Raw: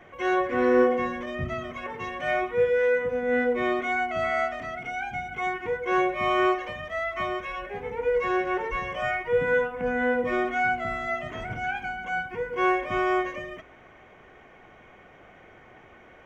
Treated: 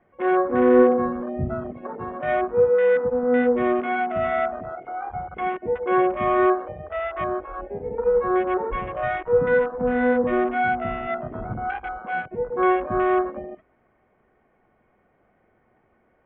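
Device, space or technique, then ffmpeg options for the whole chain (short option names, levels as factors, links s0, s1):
phone in a pocket: -af "aemphasis=mode=reproduction:type=75fm,afwtdn=0.0316,lowpass=3300,equalizer=f=220:t=o:w=0.24:g=5.5,highshelf=f=2500:g=-9,volume=1.68"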